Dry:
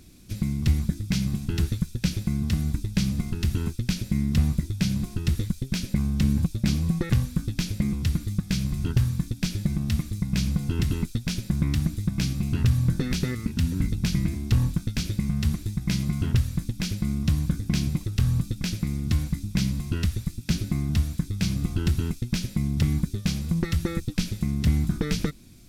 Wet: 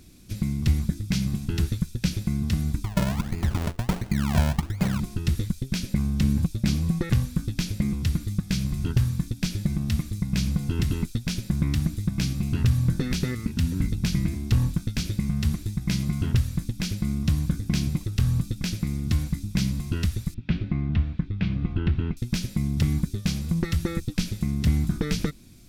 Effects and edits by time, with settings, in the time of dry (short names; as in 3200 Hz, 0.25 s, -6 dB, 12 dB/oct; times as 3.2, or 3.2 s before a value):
2.84–5 decimation with a swept rate 38× 1.4 Hz
20.34–22.17 LPF 3000 Hz 24 dB/oct